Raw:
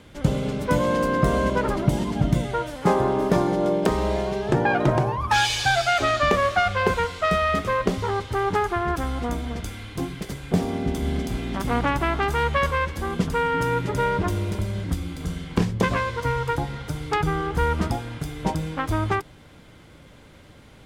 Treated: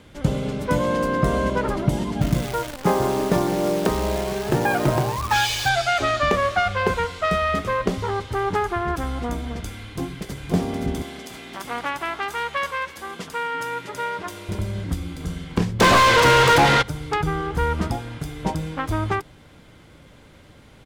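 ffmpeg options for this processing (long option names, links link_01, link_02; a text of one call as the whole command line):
ffmpeg -i in.wav -filter_complex "[0:a]asettb=1/sr,asplit=3[link_01][link_02][link_03];[link_01]atrim=end=2.214[link_04];[link_02]atrim=start=2.21:end=5.69,asetpts=PTS-STARTPTS,afade=type=in:duration=0.004:curve=qsin,afade=type=out:start_time=3.476:duration=0.004:curve=qsin,acrusher=bits=6:dc=4:mix=0:aa=0.000001[link_05];[link_03]atrim=start=5.686[link_06];[link_04][link_05]acrossfade=duration=0.004:curve1=hsin:curve2=qsin[link_07];[link_07][link_06]acrossfade=duration=0.004:curve1=qsin:curve2=hsin,asplit=2[link_08][link_09];[link_09]afade=type=in:start_time=9.84:duration=0.01,afade=type=out:start_time=10.34:duration=0.01,aecho=0:1:520|1040|1560|2080|2600|3120|3640|4160|4680|5200|5720|6240:0.562341|0.421756|0.316317|0.237238|0.177928|0.133446|0.100085|0.0750635|0.0562976|0.0422232|0.0316674|0.0237506[link_10];[link_08][link_10]amix=inputs=2:normalize=0,asettb=1/sr,asplit=3[link_11][link_12][link_13];[link_11]atrim=end=11.024[link_14];[link_12]atrim=start=11.02:end=14.49,asetpts=PTS-STARTPTS,afade=type=in:duration=0.004:curve=qsin,afade=type=out:start_time=3.466:duration=0.004:curve=qsin,highpass=frequency=990:poles=1[link_15];[link_13]atrim=start=14.486[link_16];[link_14][link_15]acrossfade=duration=0.004:curve1=hsin:curve2=qsin[link_17];[link_17][link_16]acrossfade=duration=0.004:curve1=qsin:curve2=hsin,asplit=3[link_18][link_19][link_20];[link_18]afade=type=out:start_time=15.79:duration=0.02[link_21];[link_19]asplit=2[link_22][link_23];[link_23]highpass=frequency=720:poles=1,volume=36dB,asoftclip=type=tanh:threshold=-7dB[link_24];[link_22][link_24]amix=inputs=2:normalize=0,lowpass=frequency=4200:poles=1,volume=-6dB,afade=type=in:start_time=15.79:duration=0.02,afade=type=out:start_time=16.81:duration=0.02[link_25];[link_20]afade=type=in:start_time=16.81:duration=0.02[link_26];[link_21][link_25][link_26]amix=inputs=3:normalize=0" out.wav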